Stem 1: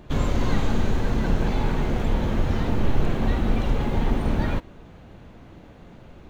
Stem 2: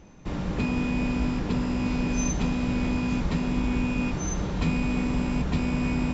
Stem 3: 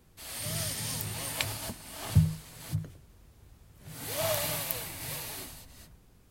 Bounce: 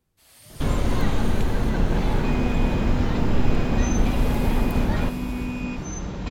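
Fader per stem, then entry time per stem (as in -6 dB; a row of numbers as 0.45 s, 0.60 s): +0.5 dB, -2.5 dB, -12.5 dB; 0.50 s, 1.65 s, 0.00 s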